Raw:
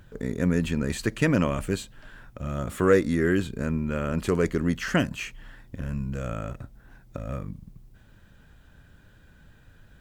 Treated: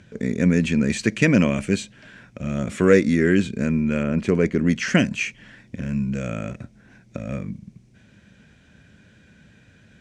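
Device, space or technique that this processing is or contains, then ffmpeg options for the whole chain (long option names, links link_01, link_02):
car door speaker: -filter_complex "[0:a]asettb=1/sr,asplit=3[link_01][link_02][link_03];[link_01]atrim=end=4.034[link_04];[link_02]atrim=start=4.03:end=4.67,asetpts=PTS-STARTPTS,afade=type=in:duration=0.004:curve=qsin,afade=type=out:start_time=0.636:duration=0.004:curve=qsin,highshelf=frequency=3000:gain=-10.5[link_05];[link_03]atrim=start=4.666[link_06];[link_04][link_05]acrossfade=duration=0.004:curve1=hsin:curve2=qsin[link_07];[link_07][link_06]acrossfade=duration=0.004:curve1=qsin:curve2=hsin,highpass=99,equalizer=frequency=210:width_type=q:width=4:gain=7,equalizer=frequency=860:width_type=q:width=4:gain=-6,equalizer=frequency=1200:width_type=q:width=4:gain=-7,equalizer=frequency=2300:width_type=q:width=4:gain=8,equalizer=frequency=5900:width_type=q:width=4:gain=5,lowpass=frequency=8800:width=0.5412,lowpass=frequency=8800:width=1.3066,volume=4dB"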